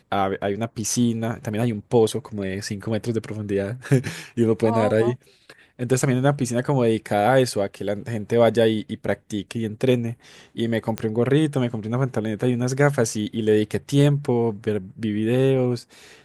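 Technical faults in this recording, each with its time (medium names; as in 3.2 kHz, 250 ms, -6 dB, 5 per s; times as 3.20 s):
10.98 s: pop -11 dBFS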